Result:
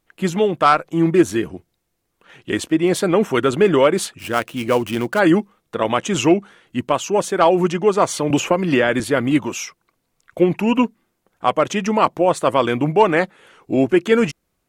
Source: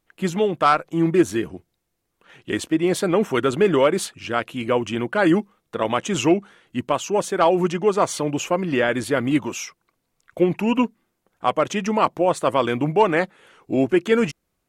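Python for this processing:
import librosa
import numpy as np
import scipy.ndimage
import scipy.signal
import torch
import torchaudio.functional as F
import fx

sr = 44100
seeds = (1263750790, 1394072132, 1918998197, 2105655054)

y = fx.dead_time(x, sr, dead_ms=0.062, at=(4.18, 5.18), fade=0.02)
y = fx.band_squash(y, sr, depth_pct=100, at=(8.3, 9.0))
y = y * 10.0 ** (3.0 / 20.0)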